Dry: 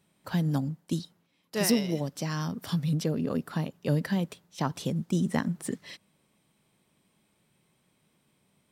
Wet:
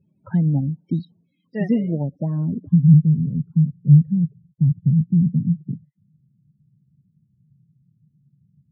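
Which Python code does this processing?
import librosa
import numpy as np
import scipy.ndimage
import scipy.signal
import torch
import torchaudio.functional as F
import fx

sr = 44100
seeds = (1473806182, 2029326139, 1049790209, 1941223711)

y = fx.spec_topn(x, sr, count=16)
y = fx.bass_treble(y, sr, bass_db=11, treble_db=-12)
y = fx.filter_sweep_lowpass(y, sr, from_hz=14000.0, to_hz=140.0, start_s=0.79, end_s=3.03, q=2.7)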